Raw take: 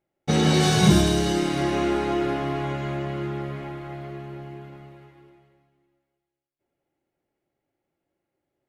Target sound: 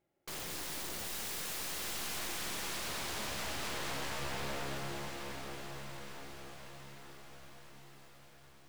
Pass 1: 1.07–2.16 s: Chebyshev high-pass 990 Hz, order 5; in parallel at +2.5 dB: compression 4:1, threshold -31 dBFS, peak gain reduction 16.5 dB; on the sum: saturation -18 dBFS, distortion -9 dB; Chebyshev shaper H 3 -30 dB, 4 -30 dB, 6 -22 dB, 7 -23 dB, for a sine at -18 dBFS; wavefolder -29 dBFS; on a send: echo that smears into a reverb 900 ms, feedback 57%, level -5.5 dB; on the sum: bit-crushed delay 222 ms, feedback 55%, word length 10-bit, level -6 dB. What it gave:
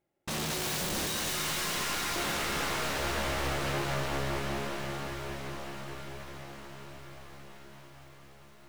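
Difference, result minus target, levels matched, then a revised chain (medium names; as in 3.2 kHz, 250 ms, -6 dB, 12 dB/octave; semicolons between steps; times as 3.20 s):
wavefolder: distortion -34 dB
1.07–2.16 s: Chebyshev high-pass 990 Hz, order 5; in parallel at +2.5 dB: compression 4:1, threshold -31 dBFS, peak gain reduction 16.5 dB; on the sum: saturation -18 dBFS, distortion -9 dB; Chebyshev shaper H 3 -30 dB, 4 -30 dB, 6 -22 dB, 7 -23 dB, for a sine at -18 dBFS; wavefolder -37.5 dBFS; on a send: echo that smears into a reverb 900 ms, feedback 57%, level -5.5 dB; on the sum: bit-crushed delay 222 ms, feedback 55%, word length 10-bit, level -6 dB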